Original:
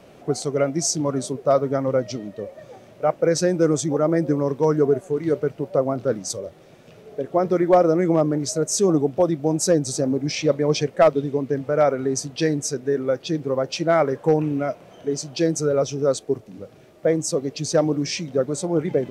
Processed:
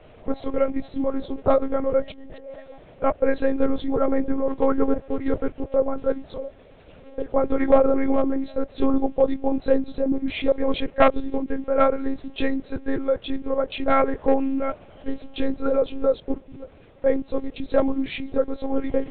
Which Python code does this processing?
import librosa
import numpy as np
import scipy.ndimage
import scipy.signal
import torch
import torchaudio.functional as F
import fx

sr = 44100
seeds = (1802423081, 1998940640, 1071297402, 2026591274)

y = fx.over_compress(x, sr, threshold_db=-39.0, ratio=-1.0, at=(2.12, 2.57))
y = fx.lpc_monotone(y, sr, seeds[0], pitch_hz=270.0, order=10)